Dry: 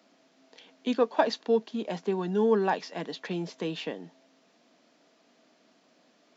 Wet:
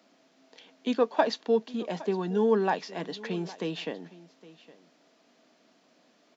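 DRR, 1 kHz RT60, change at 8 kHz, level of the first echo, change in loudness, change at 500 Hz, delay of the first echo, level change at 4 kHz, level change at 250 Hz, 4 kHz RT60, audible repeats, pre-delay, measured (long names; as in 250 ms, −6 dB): no reverb audible, no reverb audible, can't be measured, −19.5 dB, 0.0 dB, 0.0 dB, 813 ms, 0.0 dB, 0.0 dB, no reverb audible, 1, no reverb audible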